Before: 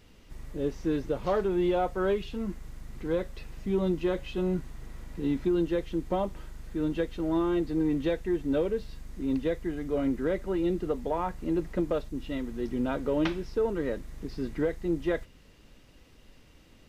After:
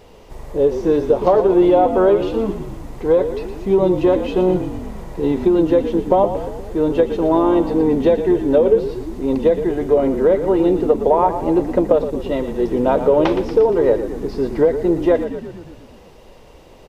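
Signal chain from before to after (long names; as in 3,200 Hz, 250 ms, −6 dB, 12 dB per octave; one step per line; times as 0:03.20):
flat-topped bell 640 Hz +11.5 dB
downward compressor, threshold −18 dBFS, peak gain reduction 6.5 dB
on a send: echo with shifted repeats 117 ms, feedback 62%, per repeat −40 Hz, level −10 dB
on the sum: level +8 dB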